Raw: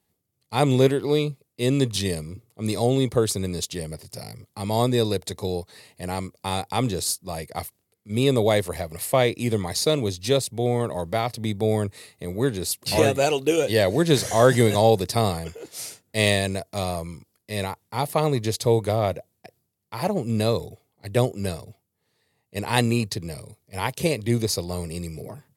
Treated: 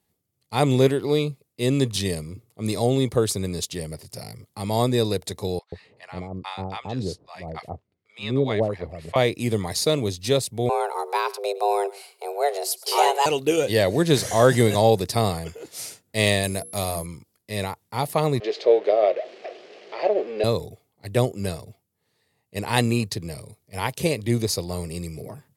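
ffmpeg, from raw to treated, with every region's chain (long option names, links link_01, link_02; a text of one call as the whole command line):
ffmpeg -i in.wav -filter_complex "[0:a]asettb=1/sr,asplit=3[link_01][link_02][link_03];[link_01]atrim=end=5.594[link_04];[link_02]atrim=start=5.59:end=9.16,asetpts=PTS-STARTPTS,afade=type=in:duration=0.004:curve=qsin,afade=type=out:start_time=3.566:duration=0.004:curve=qsin,lowpass=3200,tremolo=f=4.5:d=0.51,acrossover=split=810[link_05][link_06];[link_05]adelay=130[link_07];[link_07][link_06]amix=inputs=2:normalize=0,atrim=end_sample=157437[link_08];[link_03]atrim=start=9.156[link_09];[link_04][link_08]acrossfade=duration=0.004:curve1=hsin:curve2=qsin[link_10];[link_10][link_09]acrossfade=duration=0.004:curve1=qsin:curve2=hsin,asettb=1/sr,asplit=3[link_11][link_12][link_13];[link_11]atrim=end=10.694[link_14];[link_12]atrim=start=10.69:end=13.26,asetpts=PTS-STARTPTS,afade=type=in:duration=0.004:curve=qsin,afade=type=out:start_time=2.566:duration=0.004:curve=qsin,highpass=48,afreqshift=290,aecho=1:1:111:0.1,atrim=end_sample=113337[link_15];[link_13]atrim=start=13.256[link_16];[link_14][link_15]acrossfade=duration=0.004:curve1=hsin:curve2=qsin[link_17];[link_17][link_16]acrossfade=duration=0.004:curve1=qsin:curve2=hsin,asettb=1/sr,asplit=3[link_18][link_19][link_20];[link_18]atrim=end=16.434[link_21];[link_19]atrim=start=16.43:end=17.06,asetpts=PTS-STARTPTS,afade=type=in:duration=0.004:curve=qsin,afade=type=out:start_time=0.626:duration=0.004:curve=qsin,equalizer=frequency=13000:width=0.86:gain=12.5,bandreject=frequency=60:width_type=h:width=6,bandreject=frequency=120:width_type=h:width=6,bandreject=frequency=180:width_type=h:width=6,bandreject=frequency=240:width_type=h:width=6,bandreject=frequency=300:width_type=h:width=6,bandreject=frequency=360:width_type=h:width=6,bandreject=frequency=420:width_type=h:width=6,bandreject=frequency=480:width_type=h:width=6,aeval=exprs='val(0)+0.0112*sin(2*PI*11000*n/s)':channel_layout=same[link_22];[link_20]atrim=start=17.056[link_23];[link_21][link_22]acrossfade=duration=0.004:curve1=hsin:curve2=qsin[link_24];[link_24][link_23]acrossfade=duration=0.004:curve1=qsin:curve2=hsin,asettb=1/sr,asplit=3[link_25][link_26][link_27];[link_25]atrim=end=18.404[link_28];[link_26]atrim=start=18.4:end=20.44,asetpts=PTS-STARTPTS,afade=type=in:duration=0.004:curve=qsin,afade=type=out:start_time=2.036:duration=0.004:curve=qsin,aeval=exprs='val(0)+0.5*0.0266*sgn(val(0))':channel_layout=same,highpass=frequency=380:width=0.5412,highpass=frequency=380:width=1.3066,equalizer=frequency=400:width_type=q:width=4:gain=7,equalizer=frequency=610:width_type=q:width=4:gain=7,equalizer=frequency=960:width_type=q:width=4:gain=-9,equalizer=frequency=1400:width_type=q:width=4:gain=-7,equalizer=frequency=3700:width_type=q:width=4:gain=-4,lowpass=frequency=3900:width=0.5412,lowpass=frequency=3900:width=1.3066,asplit=2[link_29][link_30];[link_30]adelay=19,volume=-12.5dB[link_31];[link_29][link_31]amix=inputs=2:normalize=0,atrim=end_sample=89964[link_32];[link_27]atrim=start=20.436[link_33];[link_28][link_32]acrossfade=duration=0.004:curve1=hsin:curve2=qsin[link_34];[link_34][link_33]acrossfade=duration=0.004:curve1=qsin:curve2=hsin" out.wav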